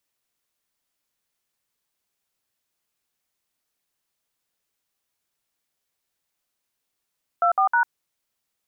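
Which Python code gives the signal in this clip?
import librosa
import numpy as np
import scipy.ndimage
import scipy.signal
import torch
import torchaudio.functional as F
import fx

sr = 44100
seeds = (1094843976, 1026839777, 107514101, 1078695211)

y = fx.dtmf(sr, digits='24#', tone_ms=98, gap_ms=59, level_db=-18.5)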